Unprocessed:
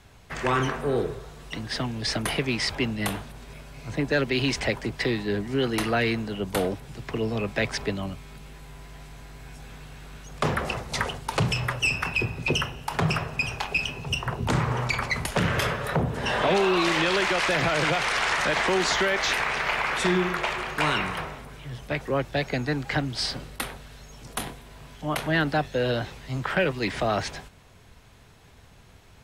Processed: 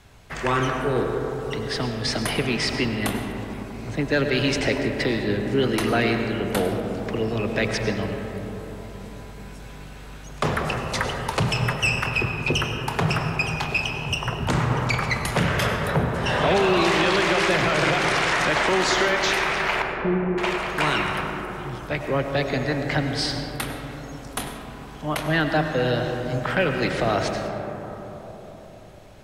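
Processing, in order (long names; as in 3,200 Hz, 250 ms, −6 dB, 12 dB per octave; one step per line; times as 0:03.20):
0:19.82–0:20.38: Butterworth low-pass 660 Hz
on a send: convolution reverb RT60 4.3 s, pre-delay 60 ms, DRR 4 dB
on the sum: level +1.5 dB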